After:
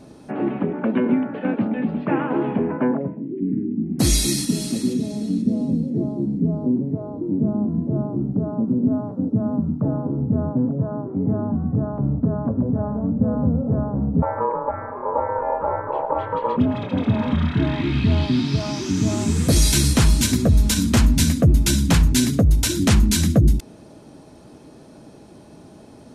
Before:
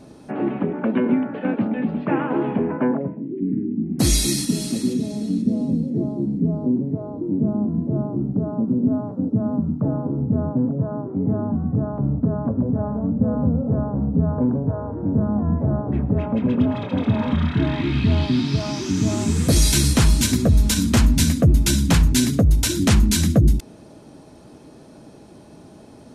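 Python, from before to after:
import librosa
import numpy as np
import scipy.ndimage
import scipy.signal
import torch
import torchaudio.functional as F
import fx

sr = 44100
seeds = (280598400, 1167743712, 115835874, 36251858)

y = fx.ring_mod(x, sr, carrier_hz=720.0, at=(14.22, 16.57))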